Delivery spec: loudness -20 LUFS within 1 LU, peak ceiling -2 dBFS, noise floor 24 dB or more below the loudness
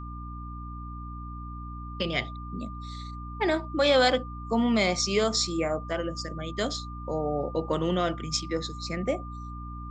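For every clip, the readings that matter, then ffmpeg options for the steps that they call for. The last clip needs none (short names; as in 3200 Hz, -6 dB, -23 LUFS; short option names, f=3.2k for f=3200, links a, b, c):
hum 60 Hz; harmonics up to 300 Hz; hum level -36 dBFS; steady tone 1200 Hz; tone level -42 dBFS; loudness -28.0 LUFS; peak -11.5 dBFS; loudness target -20.0 LUFS
-> -af "bandreject=f=60:t=h:w=4,bandreject=f=120:t=h:w=4,bandreject=f=180:t=h:w=4,bandreject=f=240:t=h:w=4,bandreject=f=300:t=h:w=4"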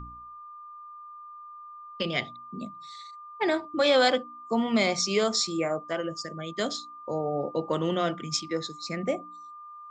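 hum none; steady tone 1200 Hz; tone level -42 dBFS
-> -af "bandreject=f=1.2k:w=30"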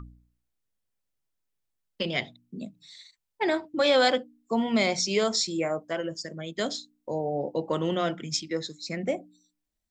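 steady tone none; loudness -28.0 LUFS; peak -12.0 dBFS; loudness target -20.0 LUFS
-> -af "volume=8dB"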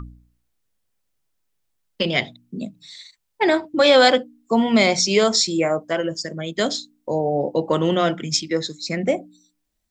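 loudness -20.0 LUFS; peak -4.0 dBFS; noise floor -74 dBFS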